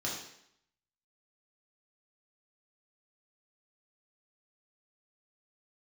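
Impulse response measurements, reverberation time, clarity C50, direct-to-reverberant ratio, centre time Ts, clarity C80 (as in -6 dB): 0.70 s, 3.5 dB, -4.5 dB, 44 ms, 6.5 dB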